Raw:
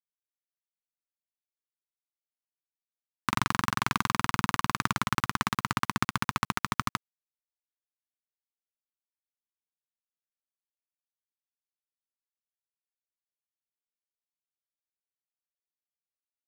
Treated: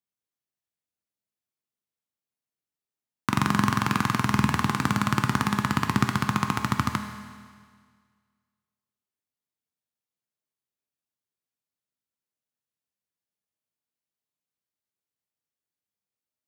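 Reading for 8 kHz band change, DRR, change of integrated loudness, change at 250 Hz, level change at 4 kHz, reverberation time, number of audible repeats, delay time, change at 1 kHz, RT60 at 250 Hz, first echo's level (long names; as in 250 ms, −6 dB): +1.0 dB, 5.0 dB, +4.5 dB, +9.5 dB, +1.0 dB, 1.8 s, no echo audible, no echo audible, +2.5 dB, 1.8 s, no echo audible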